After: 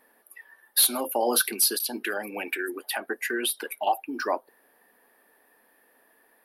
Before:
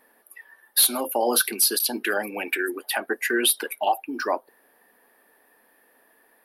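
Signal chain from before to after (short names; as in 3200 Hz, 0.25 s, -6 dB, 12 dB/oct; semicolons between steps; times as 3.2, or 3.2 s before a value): 1.71–3.87 compressor 2:1, threshold -26 dBFS, peak gain reduction 6 dB; gain -2 dB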